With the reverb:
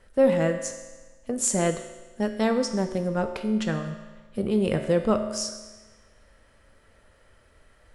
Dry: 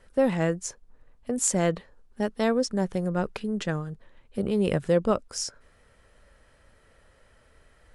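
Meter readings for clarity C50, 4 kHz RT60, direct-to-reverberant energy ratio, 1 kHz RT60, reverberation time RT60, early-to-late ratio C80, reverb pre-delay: 8.5 dB, 1.2 s, 6.0 dB, 1.3 s, 1.3 s, 10.0 dB, 6 ms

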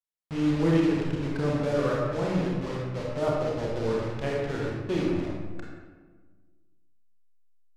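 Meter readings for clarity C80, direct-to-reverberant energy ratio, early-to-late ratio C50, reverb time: 2.0 dB, -3.5 dB, -0.5 dB, 1.5 s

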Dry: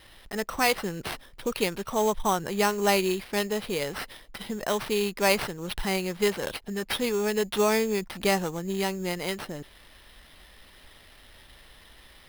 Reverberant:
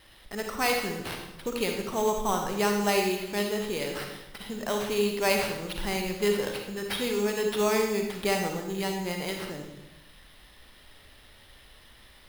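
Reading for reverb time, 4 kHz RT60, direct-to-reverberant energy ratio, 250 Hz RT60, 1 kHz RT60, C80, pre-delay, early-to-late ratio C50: 0.95 s, 0.85 s, 2.5 dB, 1.1 s, 0.90 s, 6.5 dB, 36 ms, 4.0 dB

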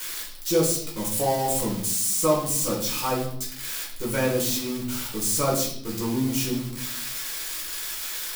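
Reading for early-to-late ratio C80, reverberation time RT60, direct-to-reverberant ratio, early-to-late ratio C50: 9.0 dB, 0.70 s, -6.0 dB, 5.5 dB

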